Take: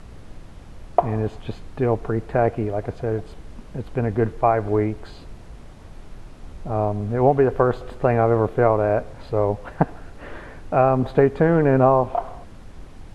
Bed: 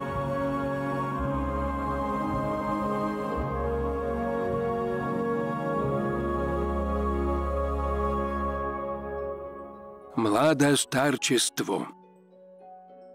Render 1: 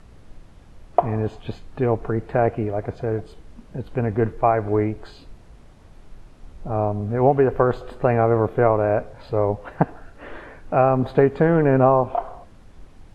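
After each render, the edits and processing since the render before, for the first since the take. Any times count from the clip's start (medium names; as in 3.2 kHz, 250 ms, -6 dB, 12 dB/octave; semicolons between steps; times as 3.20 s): noise print and reduce 6 dB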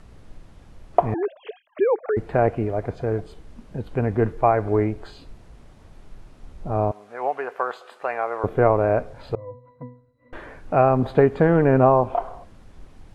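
1.14–2.17 s: formants replaced by sine waves; 6.91–8.44 s: high-pass 890 Hz; 9.35–10.33 s: pitch-class resonator B, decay 0.37 s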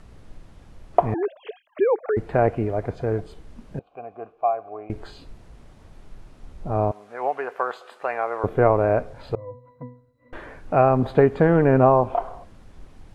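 3.79–4.90 s: vowel filter a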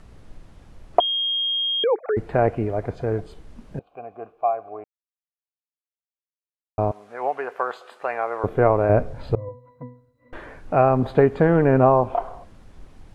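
1.00–1.84 s: bleep 3.24 kHz -20.5 dBFS; 4.84–6.78 s: mute; 8.89–9.49 s: bass shelf 340 Hz +9 dB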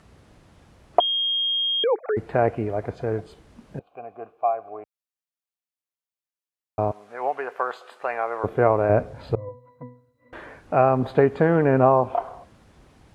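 high-pass 63 Hz; bass shelf 420 Hz -3 dB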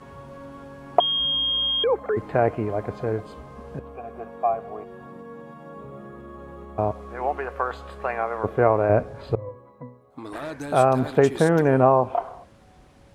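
add bed -12.5 dB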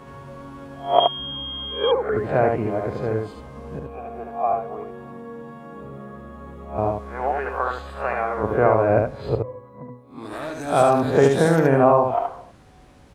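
reverse spectral sustain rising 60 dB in 0.35 s; on a send: delay 73 ms -4 dB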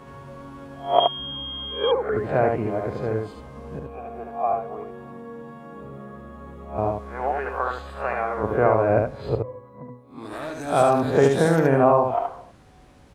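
trim -1.5 dB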